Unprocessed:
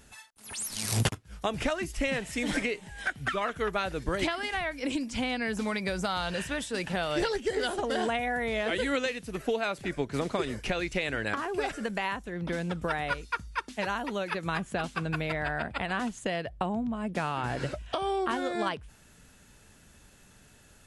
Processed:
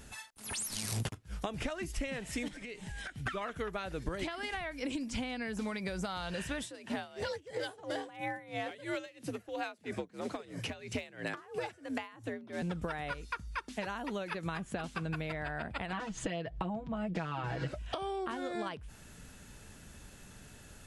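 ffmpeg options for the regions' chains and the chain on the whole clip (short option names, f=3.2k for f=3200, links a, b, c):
-filter_complex "[0:a]asettb=1/sr,asplit=3[a][b][c];[a]atrim=end=2.484[d];[b]atrim=start=2.48:end=3.26,asetpts=PTS-STARTPTS,afade=t=in:d=0.004:c=qsin,afade=t=out:st=0.776:d=0.004:c=qsin,lowpass=11k,equalizer=f=630:t=o:w=2.9:g=-5,acompressor=threshold=-42dB:ratio=10:attack=3.2:release=140:knee=1:detection=peak[e];[c]atrim=start=3.256[f];[d][e]acrossfade=d=0.004:c1=hsin:c2=qsin[g];[g][f]acrossfade=d=0.004:c1=qsin:c2=hsin,asettb=1/sr,asplit=3[h][i][j];[h]atrim=end=6.634[k];[i]atrim=start=6.63:end=12.62,asetpts=PTS-STARTPTS,afade=t=in:d=0.004:c=qsin,afade=t=out:st=5.986:d=0.004:c=qsin,afreqshift=62,volume=21.5dB,asoftclip=hard,volume=-21.5dB,aeval=exprs='val(0)*pow(10,-23*(0.5-0.5*cos(2*PI*3*n/s))/20)':c=same[l];[j]atrim=start=12.616[m];[k][l]acrossfade=d=0.004:c1=hsin:c2=qsin[n];[n][m]acrossfade=d=0.004:c1=qsin:c2=hsin,asettb=1/sr,asplit=3[o][p][q];[o]atrim=end=15.924[r];[p]atrim=start=15.92:end=17.68,asetpts=PTS-STARTPTS,afade=t=in:d=0.004:c=qsin,afade=t=out:st=1.756:d=0.004:c=qsin,lowpass=5.4k,acompressor=mode=upward:threshold=-35dB:ratio=2.5:attack=3.2:release=140:knee=2.83:detection=peak,aecho=1:1:6.2:0.99,atrim=end_sample=77616[s];[q]atrim=start=17.676[t];[r][s]acrossfade=d=0.004:c1=hsin:c2=qsin[u];[u][t]acrossfade=d=0.004:c1=qsin:c2=hsin,acompressor=threshold=-38dB:ratio=6,lowshelf=f=320:g=3,volume=2.5dB"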